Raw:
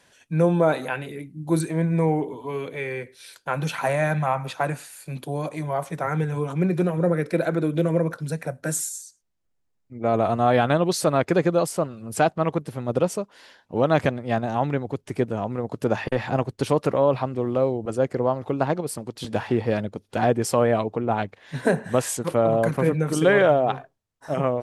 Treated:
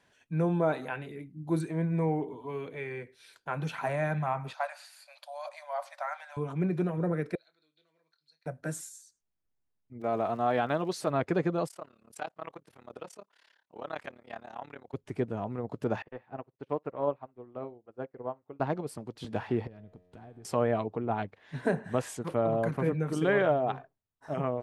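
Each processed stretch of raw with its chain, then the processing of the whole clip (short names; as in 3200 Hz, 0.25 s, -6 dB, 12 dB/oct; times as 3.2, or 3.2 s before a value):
4.53–6.37 brick-wall FIR high-pass 530 Hz + bell 4600 Hz +12 dB 0.47 oct
7.35–8.46 band-pass 4300 Hz, Q 15 + doubler 26 ms -11 dB
10–11.09 HPF 250 Hz 6 dB/oct + crackle 220/s -37 dBFS
11.68–14.94 HPF 1300 Hz 6 dB/oct + AM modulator 35 Hz, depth 90%
16.02–18.6 tone controls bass -6 dB, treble -15 dB + flutter echo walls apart 9.7 m, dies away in 0.21 s + upward expander 2.5:1, over -38 dBFS
19.67–20.45 low shelf 170 Hz +11.5 dB + compressor 16:1, threshold -28 dBFS + resonator 90 Hz, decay 2 s, mix 70%
whole clip: high shelf 4500 Hz -10.5 dB; notch 530 Hz, Q 12; gain -7 dB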